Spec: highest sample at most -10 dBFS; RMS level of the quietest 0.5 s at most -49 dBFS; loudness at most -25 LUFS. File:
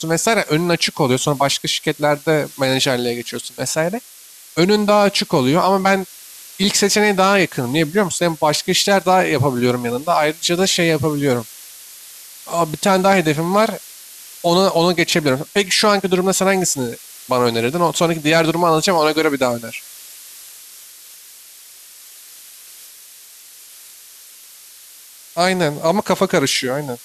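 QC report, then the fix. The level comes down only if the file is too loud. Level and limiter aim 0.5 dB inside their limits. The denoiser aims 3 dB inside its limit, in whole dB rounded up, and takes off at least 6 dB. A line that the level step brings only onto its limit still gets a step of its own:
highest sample -4.5 dBFS: fail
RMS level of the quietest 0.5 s -42 dBFS: fail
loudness -16.5 LUFS: fail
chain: trim -9 dB

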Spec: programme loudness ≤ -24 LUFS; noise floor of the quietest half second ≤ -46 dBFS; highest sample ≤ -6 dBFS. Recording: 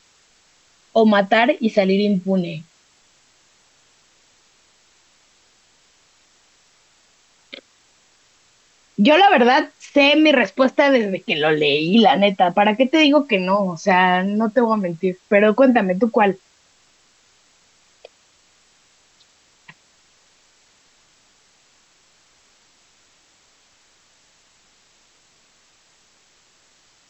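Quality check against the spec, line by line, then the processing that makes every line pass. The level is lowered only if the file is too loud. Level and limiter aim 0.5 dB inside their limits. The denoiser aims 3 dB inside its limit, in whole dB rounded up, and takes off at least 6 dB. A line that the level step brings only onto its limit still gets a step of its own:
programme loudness -16.5 LUFS: fail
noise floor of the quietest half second -57 dBFS: pass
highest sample -4.0 dBFS: fail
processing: trim -8 dB

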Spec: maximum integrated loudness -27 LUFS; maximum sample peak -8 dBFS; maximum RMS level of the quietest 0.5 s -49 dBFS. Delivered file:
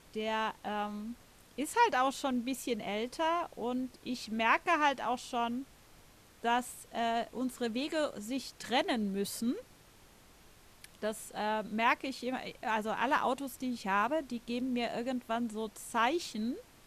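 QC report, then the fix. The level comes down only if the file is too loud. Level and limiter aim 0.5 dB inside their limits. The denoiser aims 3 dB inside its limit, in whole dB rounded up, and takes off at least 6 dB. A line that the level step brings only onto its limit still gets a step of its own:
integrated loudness -34.0 LUFS: pass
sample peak -14.0 dBFS: pass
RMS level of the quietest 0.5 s -59 dBFS: pass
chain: none needed

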